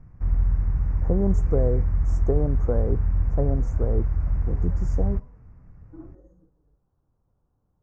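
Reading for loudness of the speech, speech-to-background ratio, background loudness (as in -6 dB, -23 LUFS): -30.0 LUFS, -4.0 dB, -26.0 LUFS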